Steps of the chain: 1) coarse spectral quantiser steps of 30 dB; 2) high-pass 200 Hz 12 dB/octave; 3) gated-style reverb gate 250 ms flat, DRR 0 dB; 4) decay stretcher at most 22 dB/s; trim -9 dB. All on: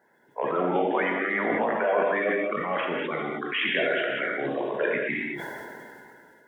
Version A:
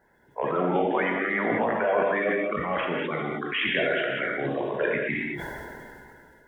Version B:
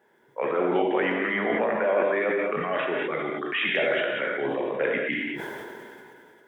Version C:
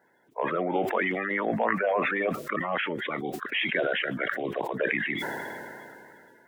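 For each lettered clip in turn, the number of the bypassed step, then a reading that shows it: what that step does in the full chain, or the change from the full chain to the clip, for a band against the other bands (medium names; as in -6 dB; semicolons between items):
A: 2, 125 Hz band +5.0 dB; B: 1, 1 kHz band -2.0 dB; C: 3, momentary loudness spread change +1 LU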